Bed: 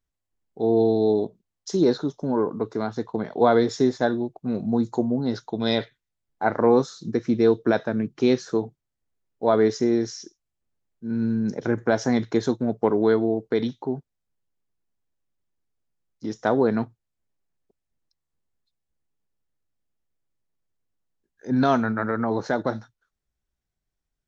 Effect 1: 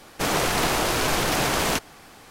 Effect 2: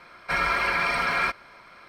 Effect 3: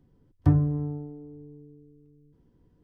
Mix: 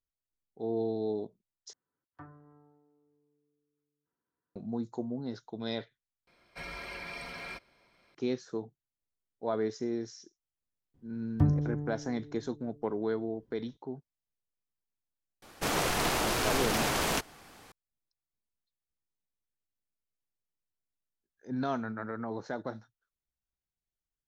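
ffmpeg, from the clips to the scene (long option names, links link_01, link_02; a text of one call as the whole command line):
ffmpeg -i bed.wav -i cue0.wav -i cue1.wav -i cue2.wav -filter_complex "[3:a]asplit=2[link_01][link_02];[0:a]volume=-12.5dB[link_03];[link_01]bandpass=frequency=1400:width_type=q:width=2.8:csg=0[link_04];[2:a]equalizer=frequency=1300:width_type=o:width=1.2:gain=-12.5[link_05];[link_03]asplit=3[link_06][link_07][link_08];[link_06]atrim=end=1.734[link_09];[link_04]atrim=end=2.83,asetpts=PTS-STARTPTS,volume=-5.5dB[link_10];[link_07]atrim=start=4.556:end=6.274[link_11];[link_05]atrim=end=1.88,asetpts=PTS-STARTPTS,volume=-11.5dB[link_12];[link_08]atrim=start=8.146[link_13];[link_02]atrim=end=2.83,asetpts=PTS-STARTPTS,volume=-5dB,afade=type=in:duration=0.004:curve=hsin,afade=type=out:start_time=2.826:duration=0.004:curve=hsin,adelay=10940[link_14];[1:a]atrim=end=2.3,asetpts=PTS-STARTPTS,volume=-6.5dB,afade=type=in:duration=0.004:curve=hsin,afade=type=out:start_time=2.296:duration=0.004:curve=hsin,adelay=15420[link_15];[link_09][link_10]acrossfade=duration=0.004:curve1=hsin:curve2=hsin[link_16];[link_16][link_11]acrossfade=duration=0.004:curve1=hsin:curve2=hsin[link_17];[link_17][link_12]acrossfade=duration=0.004:curve1=hsin:curve2=hsin[link_18];[link_18][link_13]acrossfade=duration=0.004:curve1=hsin:curve2=hsin[link_19];[link_19][link_14][link_15]amix=inputs=3:normalize=0" out.wav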